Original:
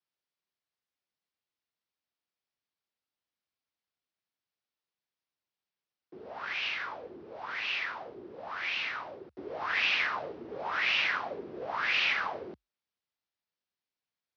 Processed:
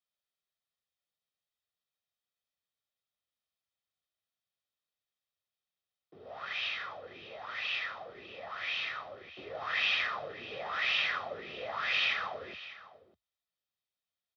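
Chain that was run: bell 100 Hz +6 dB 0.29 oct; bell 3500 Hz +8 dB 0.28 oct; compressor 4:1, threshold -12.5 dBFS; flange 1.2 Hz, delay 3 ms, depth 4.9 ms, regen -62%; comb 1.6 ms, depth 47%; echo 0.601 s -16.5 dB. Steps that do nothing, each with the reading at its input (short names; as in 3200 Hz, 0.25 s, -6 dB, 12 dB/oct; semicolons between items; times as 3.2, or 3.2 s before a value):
compressor, threshold -12.5 dBFS: input peak -14.5 dBFS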